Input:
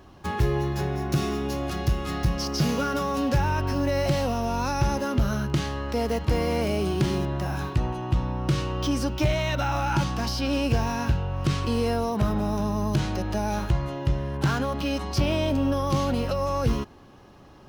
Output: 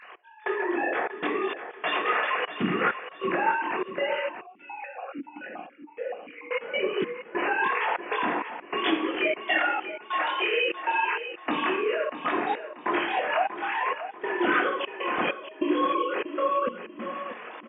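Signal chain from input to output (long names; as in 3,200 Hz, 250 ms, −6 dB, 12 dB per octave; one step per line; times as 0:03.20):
three sine waves on the formant tracks
downward compressor 4 to 1, threshold −34 dBFS, peak gain reduction 16 dB
convolution reverb RT60 0.70 s, pre-delay 21 ms, DRR −5.5 dB
gate pattern "x..xxxx.x" 98 BPM −24 dB
speech leveller within 5 dB 2 s
high-shelf EQ 2,300 Hz +10 dB
repeating echo 638 ms, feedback 36%, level −11 dB
0:04.41–0:06.51: formant filter that steps through the vowels 7 Hz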